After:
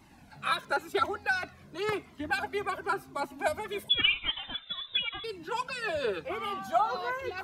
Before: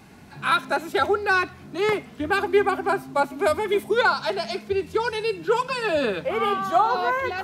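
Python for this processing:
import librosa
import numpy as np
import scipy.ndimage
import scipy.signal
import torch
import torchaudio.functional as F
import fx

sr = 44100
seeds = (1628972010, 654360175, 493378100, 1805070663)

y = fx.hpss(x, sr, part='harmonic', gain_db=-8)
y = fx.freq_invert(y, sr, carrier_hz=3800, at=(3.89, 5.24))
y = fx.comb_cascade(y, sr, direction='falling', hz=0.93)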